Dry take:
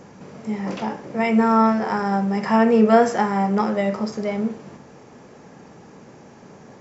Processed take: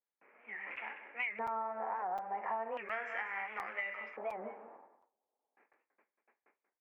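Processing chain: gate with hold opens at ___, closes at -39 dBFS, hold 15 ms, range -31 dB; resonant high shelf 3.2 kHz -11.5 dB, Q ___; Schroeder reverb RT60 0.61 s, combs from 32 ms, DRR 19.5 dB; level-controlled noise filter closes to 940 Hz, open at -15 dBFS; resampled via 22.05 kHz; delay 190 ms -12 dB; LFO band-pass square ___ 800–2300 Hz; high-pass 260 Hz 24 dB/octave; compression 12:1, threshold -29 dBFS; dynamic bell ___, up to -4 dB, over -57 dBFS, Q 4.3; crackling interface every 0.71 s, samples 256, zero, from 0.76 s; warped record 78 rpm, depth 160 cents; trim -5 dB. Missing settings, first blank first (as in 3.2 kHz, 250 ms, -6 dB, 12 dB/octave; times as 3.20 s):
-34 dBFS, 3, 0.36 Hz, 380 Hz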